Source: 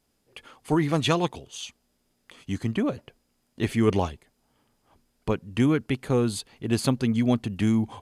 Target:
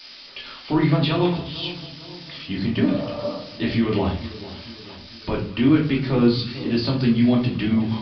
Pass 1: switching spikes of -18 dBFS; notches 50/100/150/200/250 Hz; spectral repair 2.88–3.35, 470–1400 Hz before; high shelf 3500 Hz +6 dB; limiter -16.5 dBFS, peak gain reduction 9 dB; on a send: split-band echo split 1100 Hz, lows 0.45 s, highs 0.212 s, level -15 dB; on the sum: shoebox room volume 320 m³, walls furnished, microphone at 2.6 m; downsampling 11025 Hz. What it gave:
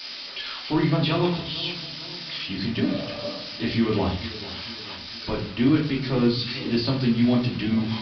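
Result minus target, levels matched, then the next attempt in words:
switching spikes: distortion +11 dB
switching spikes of -29 dBFS; notches 50/100/150/200/250 Hz; spectral repair 2.88–3.35, 470–1400 Hz before; high shelf 3500 Hz +6 dB; limiter -16.5 dBFS, peak gain reduction 8.5 dB; on a send: split-band echo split 1100 Hz, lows 0.45 s, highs 0.212 s, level -15 dB; on the sum: shoebox room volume 320 m³, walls furnished, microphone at 2.6 m; downsampling 11025 Hz

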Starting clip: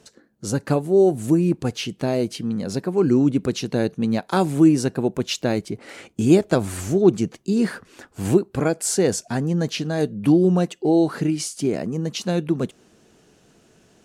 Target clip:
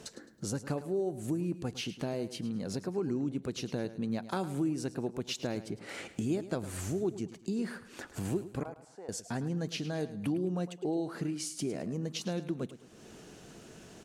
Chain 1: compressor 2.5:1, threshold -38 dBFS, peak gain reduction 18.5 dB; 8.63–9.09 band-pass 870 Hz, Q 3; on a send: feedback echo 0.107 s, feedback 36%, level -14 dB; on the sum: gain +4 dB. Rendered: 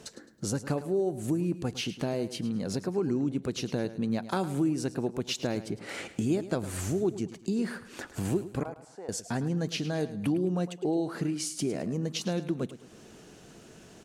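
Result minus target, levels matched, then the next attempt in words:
compressor: peak gain reduction -4 dB
compressor 2.5:1, threshold -45 dBFS, peak gain reduction 23 dB; 8.63–9.09 band-pass 870 Hz, Q 3; on a send: feedback echo 0.107 s, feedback 36%, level -14 dB; on the sum: gain +4 dB

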